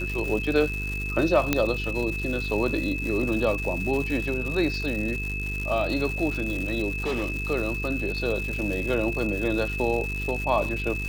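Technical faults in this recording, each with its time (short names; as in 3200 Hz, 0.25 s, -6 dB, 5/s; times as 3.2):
buzz 50 Hz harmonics 9 -32 dBFS
crackle 270/s -30 dBFS
tone 2600 Hz -31 dBFS
1.53 pop -6 dBFS
6.89–7.38 clipped -23 dBFS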